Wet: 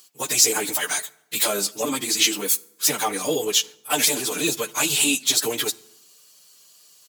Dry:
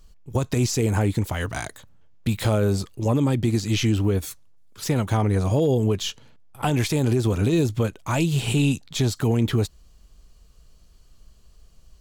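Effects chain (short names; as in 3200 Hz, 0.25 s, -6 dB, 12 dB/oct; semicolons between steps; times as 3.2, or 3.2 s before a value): HPF 190 Hz 24 dB/oct; tilt +4.5 dB/oct; comb 6.7 ms, depth 55%; plain phase-vocoder stretch 0.59×; reverb RT60 0.85 s, pre-delay 3 ms, DRR 17.5 dB; gain +4.5 dB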